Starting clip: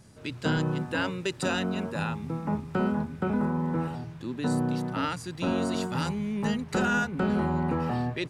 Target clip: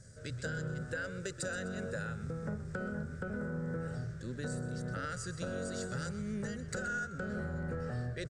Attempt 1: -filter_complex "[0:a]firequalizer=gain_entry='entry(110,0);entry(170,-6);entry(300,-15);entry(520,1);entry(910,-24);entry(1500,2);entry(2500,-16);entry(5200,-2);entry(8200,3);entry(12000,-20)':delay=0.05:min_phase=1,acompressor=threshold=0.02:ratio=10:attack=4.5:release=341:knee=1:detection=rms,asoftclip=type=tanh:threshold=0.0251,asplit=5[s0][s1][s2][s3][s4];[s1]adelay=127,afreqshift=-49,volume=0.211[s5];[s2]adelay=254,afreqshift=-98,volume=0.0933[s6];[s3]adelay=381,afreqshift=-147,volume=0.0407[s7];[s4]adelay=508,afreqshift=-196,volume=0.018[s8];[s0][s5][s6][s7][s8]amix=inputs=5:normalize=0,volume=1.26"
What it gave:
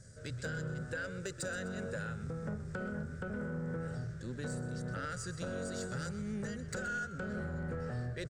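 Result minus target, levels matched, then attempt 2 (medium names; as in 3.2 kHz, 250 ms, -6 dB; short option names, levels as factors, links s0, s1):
saturation: distortion +11 dB
-filter_complex "[0:a]firequalizer=gain_entry='entry(110,0);entry(170,-6);entry(300,-15);entry(520,1);entry(910,-24);entry(1500,2);entry(2500,-16);entry(5200,-2);entry(8200,3);entry(12000,-20)':delay=0.05:min_phase=1,acompressor=threshold=0.02:ratio=10:attack=4.5:release=341:knee=1:detection=rms,asoftclip=type=tanh:threshold=0.0531,asplit=5[s0][s1][s2][s3][s4];[s1]adelay=127,afreqshift=-49,volume=0.211[s5];[s2]adelay=254,afreqshift=-98,volume=0.0933[s6];[s3]adelay=381,afreqshift=-147,volume=0.0407[s7];[s4]adelay=508,afreqshift=-196,volume=0.018[s8];[s0][s5][s6][s7][s8]amix=inputs=5:normalize=0,volume=1.26"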